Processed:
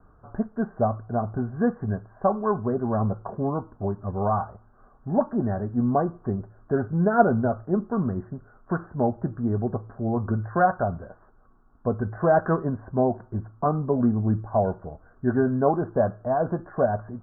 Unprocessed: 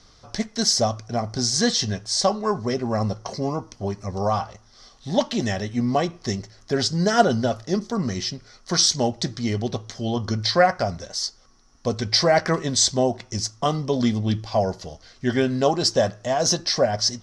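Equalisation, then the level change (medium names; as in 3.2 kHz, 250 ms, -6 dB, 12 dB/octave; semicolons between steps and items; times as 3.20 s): steep low-pass 1.6 kHz 96 dB/octave; distance through air 240 m; band-stop 530 Hz, Q 15; 0.0 dB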